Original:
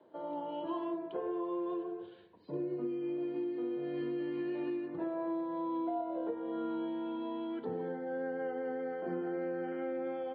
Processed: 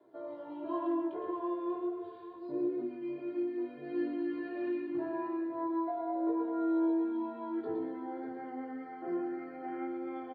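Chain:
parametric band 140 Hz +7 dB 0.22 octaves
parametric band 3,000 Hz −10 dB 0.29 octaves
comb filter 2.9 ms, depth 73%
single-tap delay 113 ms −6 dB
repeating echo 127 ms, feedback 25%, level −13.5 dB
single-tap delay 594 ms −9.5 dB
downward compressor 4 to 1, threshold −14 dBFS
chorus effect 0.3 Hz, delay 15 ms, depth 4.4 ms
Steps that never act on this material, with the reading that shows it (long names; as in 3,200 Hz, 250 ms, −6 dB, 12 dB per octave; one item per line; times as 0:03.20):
downward compressor, threshold −14 dBFS: peak of its input −20.0 dBFS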